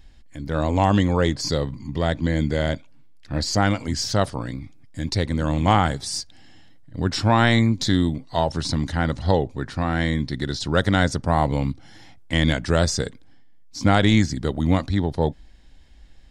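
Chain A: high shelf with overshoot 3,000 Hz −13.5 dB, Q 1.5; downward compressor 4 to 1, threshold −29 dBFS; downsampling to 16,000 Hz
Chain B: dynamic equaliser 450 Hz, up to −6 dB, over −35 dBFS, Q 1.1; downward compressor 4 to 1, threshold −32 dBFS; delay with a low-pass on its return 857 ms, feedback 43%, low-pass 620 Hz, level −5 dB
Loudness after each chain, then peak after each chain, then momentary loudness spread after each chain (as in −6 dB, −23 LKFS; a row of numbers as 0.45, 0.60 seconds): −33.0, −34.5 LKFS; −15.5, −18.0 dBFS; 8, 7 LU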